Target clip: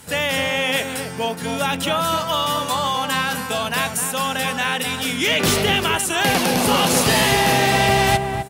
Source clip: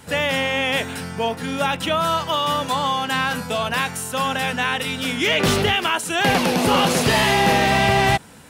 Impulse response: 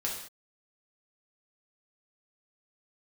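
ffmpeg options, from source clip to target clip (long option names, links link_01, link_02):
-filter_complex "[0:a]aemphasis=mode=production:type=cd,asplit=2[link_01][link_02];[link_02]adelay=256,lowpass=frequency=980:poles=1,volume=-4dB,asplit=2[link_03][link_04];[link_04]adelay=256,lowpass=frequency=980:poles=1,volume=0.23,asplit=2[link_05][link_06];[link_06]adelay=256,lowpass=frequency=980:poles=1,volume=0.23[link_07];[link_01][link_03][link_05][link_07]amix=inputs=4:normalize=0,volume=-1dB"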